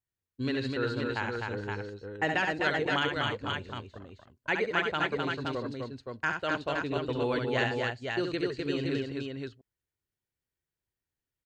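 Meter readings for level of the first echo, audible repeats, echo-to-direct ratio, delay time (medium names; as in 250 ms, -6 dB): -5.5 dB, 3, 0.5 dB, 69 ms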